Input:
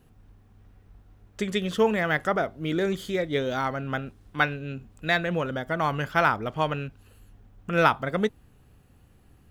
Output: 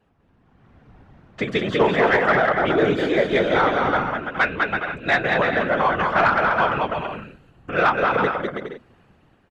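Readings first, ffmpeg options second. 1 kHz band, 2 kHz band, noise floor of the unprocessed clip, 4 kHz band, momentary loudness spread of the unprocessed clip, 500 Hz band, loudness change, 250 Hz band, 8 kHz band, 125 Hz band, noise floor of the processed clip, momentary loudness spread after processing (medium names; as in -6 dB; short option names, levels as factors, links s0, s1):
+8.0 dB, +7.5 dB, -57 dBFS, +4.5 dB, 11 LU, +7.0 dB, +6.5 dB, +4.5 dB, no reading, +1.0 dB, -60 dBFS, 10 LU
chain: -filter_complex "[0:a]aemphasis=mode=reproduction:type=50fm,acrossover=split=380|5300[s0][s1][s2];[s2]alimiter=level_in=17.8:limit=0.0631:level=0:latency=1,volume=0.0562[s3];[s0][s1][s3]amix=inputs=3:normalize=0,dynaudnorm=f=100:g=13:m=3.98,asplit=2[s4][s5];[s5]aecho=0:1:200|330|414.5|469.4|505.1:0.631|0.398|0.251|0.158|0.1[s6];[s4][s6]amix=inputs=2:normalize=0,afftfilt=real='hypot(re,im)*cos(2*PI*random(0))':imag='hypot(re,im)*sin(2*PI*random(1))':win_size=512:overlap=0.75,asplit=2[s7][s8];[s8]highpass=f=720:p=1,volume=4.47,asoftclip=type=tanh:threshold=0.501[s9];[s7][s9]amix=inputs=2:normalize=0,lowpass=f=2700:p=1,volume=0.501"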